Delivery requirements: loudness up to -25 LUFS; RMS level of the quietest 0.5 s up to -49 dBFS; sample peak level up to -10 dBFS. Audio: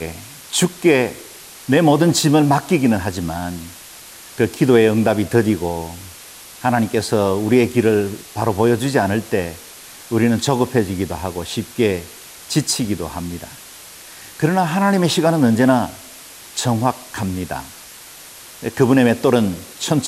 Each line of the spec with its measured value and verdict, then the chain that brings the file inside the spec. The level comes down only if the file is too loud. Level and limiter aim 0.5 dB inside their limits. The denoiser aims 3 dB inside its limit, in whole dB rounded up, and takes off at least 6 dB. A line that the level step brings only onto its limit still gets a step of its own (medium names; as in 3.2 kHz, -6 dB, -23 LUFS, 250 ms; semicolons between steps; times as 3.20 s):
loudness -18.0 LUFS: fail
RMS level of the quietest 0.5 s -39 dBFS: fail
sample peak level -2.5 dBFS: fail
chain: noise reduction 6 dB, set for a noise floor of -39 dBFS; trim -7.5 dB; peak limiter -10.5 dBFS